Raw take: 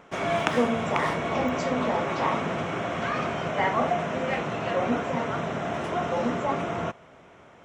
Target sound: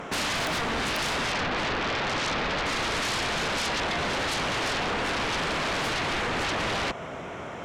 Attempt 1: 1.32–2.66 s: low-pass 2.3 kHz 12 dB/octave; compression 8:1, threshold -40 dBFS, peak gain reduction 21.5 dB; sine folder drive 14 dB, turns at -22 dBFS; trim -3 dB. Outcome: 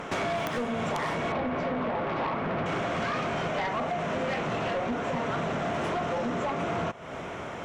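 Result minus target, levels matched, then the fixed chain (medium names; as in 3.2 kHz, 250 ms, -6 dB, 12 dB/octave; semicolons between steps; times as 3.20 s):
compression: peak gain reduction +10 dB
1.32–2.66 s: low-pass 2.3 kHz 12 dB/octave; compression 8:1, threshold -28.5 dBFS, peak gain reduction 11.5 dB; sine folder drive 14 dB, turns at -22 dBFS; trim -3 dB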